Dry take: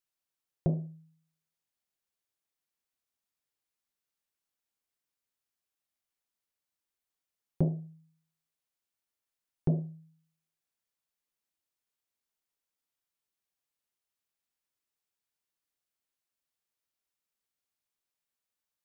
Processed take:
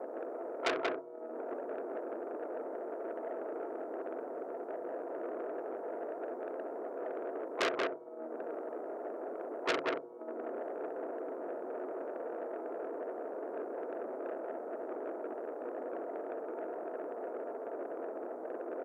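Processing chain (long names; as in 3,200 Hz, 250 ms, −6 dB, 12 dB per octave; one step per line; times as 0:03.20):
spike at every zero crossing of −32.5 dBFS
in parallel at +3 dB: speech leveller within 4 dB 0.5 s
on the sum: spectral tilt +3.5 dB per octave
comb filter 4.4 ms, depth 68%
asymmetric clip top −13 dBFS, bottom −4.5 dBFS
brickwall limiter −14 dBFS, peak gain reduction 8.5 dB
elliptic band-pass filter 340–680 Hz, stop band 70 dB
pitch-shifted copies added −5 semitones −7 dB, +5 semitones −13 dB, +12 semitones −16 dB
on a send: single-tap delay 184 ms −3.5 dB
on the sum: saturating transformer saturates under 3,600 Hz
level +12.5 dB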